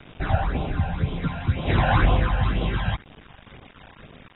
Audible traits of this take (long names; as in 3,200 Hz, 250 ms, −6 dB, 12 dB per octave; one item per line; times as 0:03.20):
aliases and images of a low sample rate 7,500 Hz, jitter 0%
phaser sweep stages 12, 2 Hz, lowest notch 350–1,700 Hz
a quantiser's noise floor 8 bits, dither none
AAC